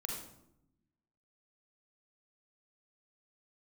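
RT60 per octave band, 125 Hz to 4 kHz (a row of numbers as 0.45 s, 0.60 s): 1.4 s, 1.3 s, 0.85 s, 0.70 s, 0.55 s, 0.50 s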